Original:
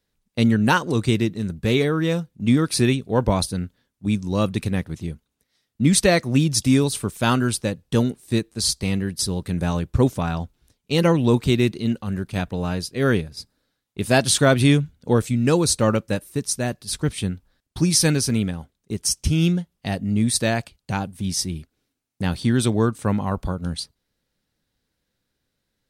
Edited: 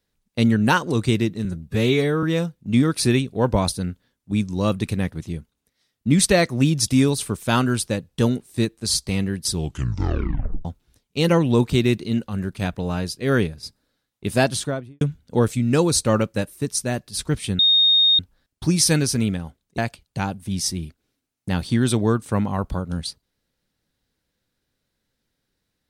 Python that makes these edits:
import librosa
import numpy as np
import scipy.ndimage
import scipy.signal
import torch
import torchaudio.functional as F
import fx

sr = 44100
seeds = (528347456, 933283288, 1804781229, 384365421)

y = fx.studio_fade_out(x, sr, start_s=14.03, length_s=0.72)
y = fx.edit(y, sr, fx.stretch_span(start_s=1.45, length_s=0.52, factor=1.5),
    fx.tape_stop(start_s=9.22, length_s=1.17),
    fx.insert_tone(at_s=17.33, length_s=0.6, hz=3700.0, db=-12.5),
    fx.cut(start_s=18.92, length_s=1.59), tone=tone)